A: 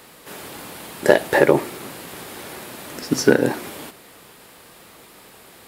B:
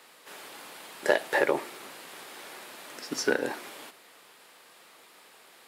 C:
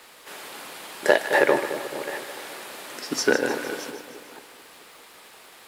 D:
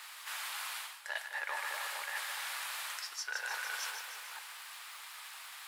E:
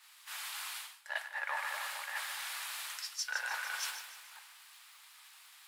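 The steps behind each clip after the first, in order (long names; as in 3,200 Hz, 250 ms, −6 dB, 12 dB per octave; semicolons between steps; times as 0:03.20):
meter weighting curve A; level −7.5 dB
delay that plays each chunk backwards 439 ms, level −14 dB; surface crackle 260 per second −47 dBFS; echo with a time of its own for lows and highs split 900 Hz, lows 217 ms, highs 153 ms, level −10 dB; level +5.5 dB
inverse Chebyshev high-pass filter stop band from 160 Hz, stop band 80 dB; reversed playback; downward compressor 20 to 1, threshold −36 dBFS, peak gain reduction 19.5 dB; reversed playback; level +1 dB
high-pass filter 570 Hz 24 dB per octave; multiband upward and downward expander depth 100%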